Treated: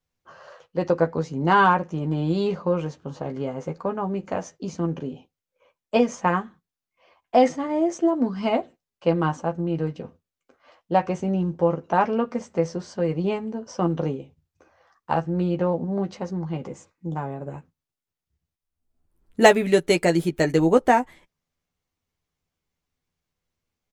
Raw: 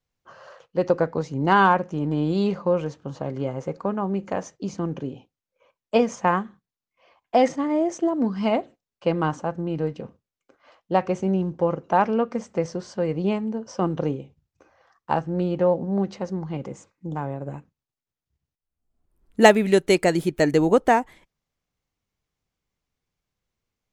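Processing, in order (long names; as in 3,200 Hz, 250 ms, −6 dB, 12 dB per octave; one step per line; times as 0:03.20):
double-tracking delay 12 ms −6 dB
level −1 dB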